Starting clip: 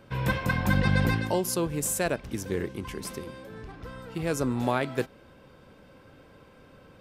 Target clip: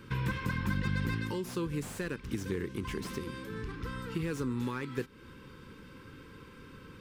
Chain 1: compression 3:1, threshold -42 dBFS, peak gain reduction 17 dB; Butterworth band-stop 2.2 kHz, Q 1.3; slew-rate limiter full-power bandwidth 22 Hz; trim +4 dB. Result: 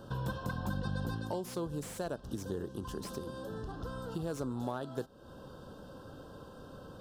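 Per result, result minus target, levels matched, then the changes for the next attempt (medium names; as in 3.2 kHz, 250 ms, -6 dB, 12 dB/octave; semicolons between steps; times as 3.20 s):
2 kHz band -5.0 dB; compression: peak gain reduction +4 dB
change: Butterworth band-stop 670 Hz, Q 1.3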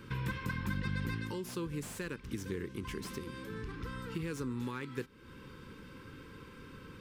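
compression: peak gain reduction +4 dB
change: compression 3:1, threshold -36 dBFS, peak gain reduction 13 dB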